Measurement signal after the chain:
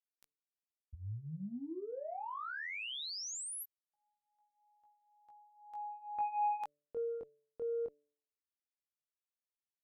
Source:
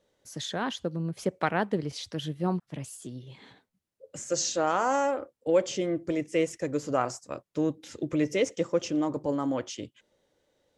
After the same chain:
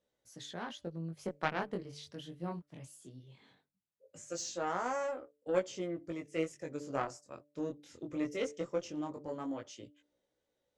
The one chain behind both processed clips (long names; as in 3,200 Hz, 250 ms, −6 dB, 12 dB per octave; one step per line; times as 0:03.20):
harmonic generator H 3 −14 dB, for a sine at −10.5 dBFS
chorus effect 0.19 Hz, delay 16 ms, depth 7.5 ms
hum removal 146.7 Hz, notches 4
level −1 dB